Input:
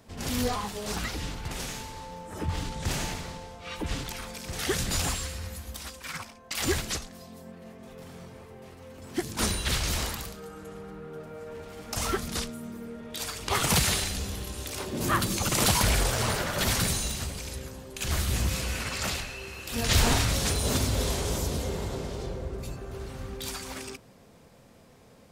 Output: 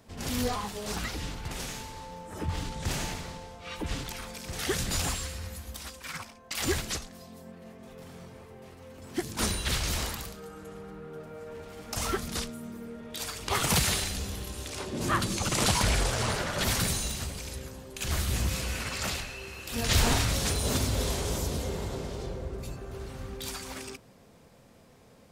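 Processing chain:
0:14.66–0:16.64: low-pass filter 9,800 Hz 12 dB per octave
level −1.5 dB

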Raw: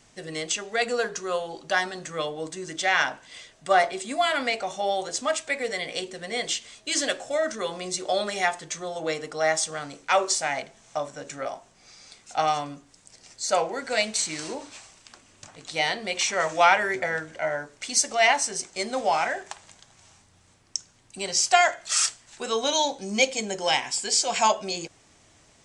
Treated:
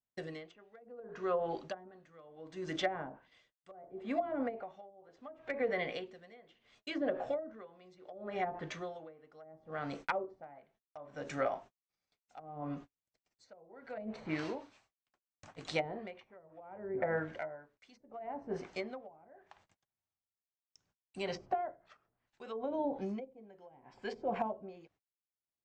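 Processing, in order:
noise gate −47 dBFS, range −42 dB
treble cut that deepens with the level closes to 410 Hz, closed at −20.5 dBFS
high-shelf EQ 3,800 Hz −10 dB
downward compressor 5 to 1, threshold −30 dBFS, peak gain reduction 9 dB
asymmetric clip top −23 dBFS
high-frequency loss of the air 59 metres
tremolo with a sine in dB 0.7 Hz, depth 25 dB
level +2 dB

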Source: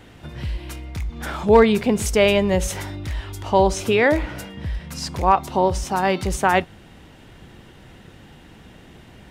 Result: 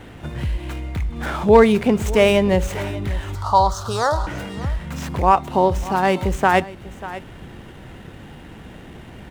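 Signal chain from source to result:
running median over 9 samples
0:03.35–0:04.27: drawn EQ curve 110 Hz 0 dB, 300 Hz −19 dB, 1,300 Hz +11 dB, 2,200 Hz −29 dB, 4,200 Hz +8 dB, 14,000 Hz −5 dB
single-tap delay 591 ms −19 dB
in parallel at −1.5 dB: downward compressor, threshold −32 dBFS, peak gain reduction 21.5 dB
on the sum: level +1 dB

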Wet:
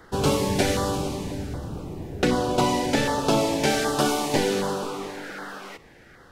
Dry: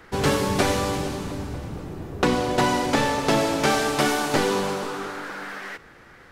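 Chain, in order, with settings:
auto-filter notch saw down 1.3 Hz 950–2,600 Hz

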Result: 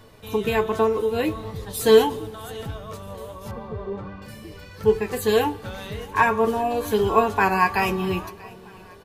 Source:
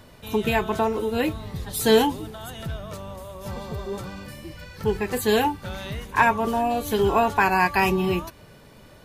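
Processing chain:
on a send: repeating echo 638 ms, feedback 53%, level −22.5 dB
on the sum: flanger 1.4 Hz, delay 8.7 ms, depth 1.9 ms, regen +54%
hollow resonant body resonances 450/1,100 Hz, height 10 dB, ringing for 100 ms
0:03.51–0:04.22: low-pass filter 2,000 Hz 12 dB per octave
dense smooth reverb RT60 1.7 s, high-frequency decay 0.7×, DRR 18.5 dB
level +2.5 dB

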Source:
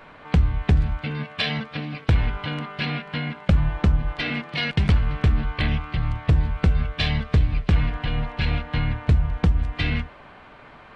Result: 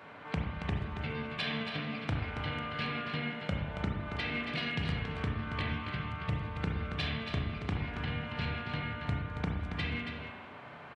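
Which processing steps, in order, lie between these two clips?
high-pass filter 75 Hz 24 dB per octave
downward compressor 2.5 to 1, threshold −30 dBFS, peak gain reduction 11 dB
soft clipping −14 dBFS, distortion −27 dB
on a send: single-tap delay 277 ms −7.5 dB
on the sum: spring reverb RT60 1.1 s, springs 31/38 ms, chirp 75 ms, DRR 0.5 dB
level −5.5 dB

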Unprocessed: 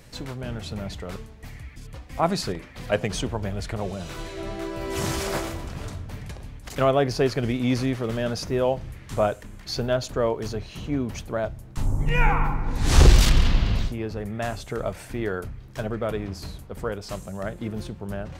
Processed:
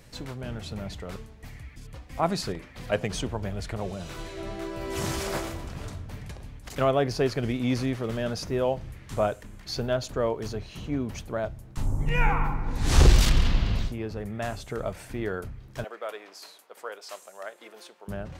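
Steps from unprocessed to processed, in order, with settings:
0:15.84–0:18.08: Bessel high-pass filter 670 Hz, order 4
level −3 dB

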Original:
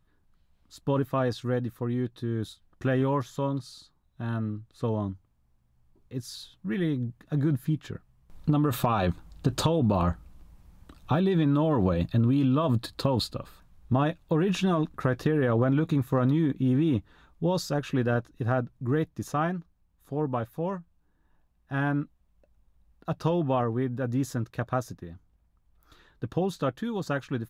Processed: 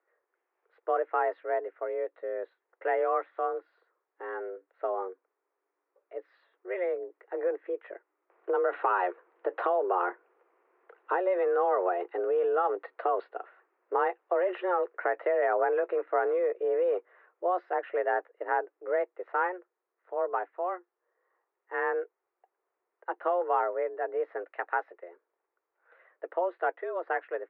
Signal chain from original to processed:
single-sideband voice off tune +180 Hz 250–2,100 Hz
0:24.48–0:25.03: spectral tilt +2.5 dB per octave

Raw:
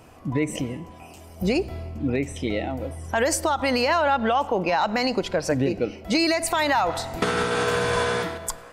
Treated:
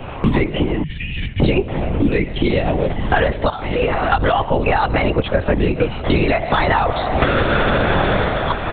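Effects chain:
noise gate with hold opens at −34 dBFS
0:00.83–0:01.42: Chebyshev band-stop filter 180–1,700 Hz, order 5
in parallel at 0 dB: downward compressor, threshold −32 dBFS, peak gain reduction 14 dB
0:03.49–0:04.13: on the sum: tuned comb filter 54 Hz, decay 0.75 s, harmonics odd, mix 90%
single-tap delay 1,151 ms −20.5 dB
linear-prediction vocoder at 8 kHz whisper
multiband upward and downward compressor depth 100%
level +5 dB

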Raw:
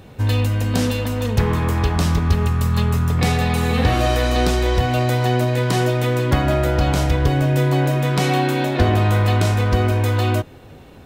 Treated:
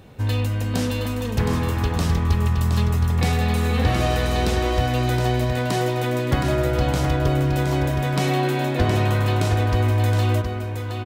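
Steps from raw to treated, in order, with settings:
single-tap delay 718 ms −6 dB
level −4 dB

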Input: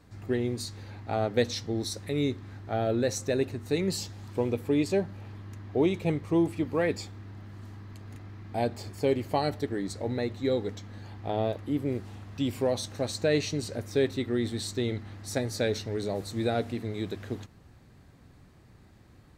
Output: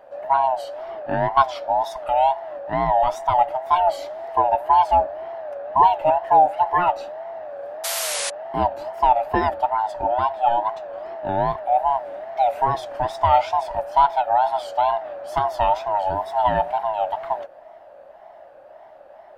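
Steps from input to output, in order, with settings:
neighbouring bands swapped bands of 500 Hz
drawn EQ curve 250 Hz 0 dB, 360 Hz +11 dB, 1,700 Hz +9 dB, 7,200 Hz −12 dB, 12,000 Hz −5 dB
sound drawn into the spectrogram noise, 0:07.83–0:08.30, 450–12,000 Hz −26 dBFS
tape wow and flutter 150 cents

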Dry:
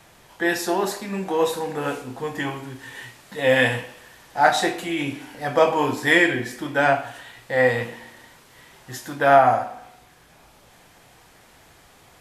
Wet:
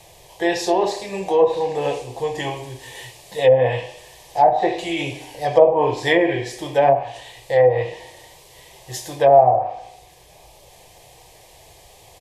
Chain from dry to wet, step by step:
phaser with its sweep stopped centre 580 Hz, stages 4
ambience of single reflections 38 ms −17 dB, 77 ms −15.5 dB
treble cut that deepens with the level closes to 680 Hz, closed at −15 dBFS
level +7 dB

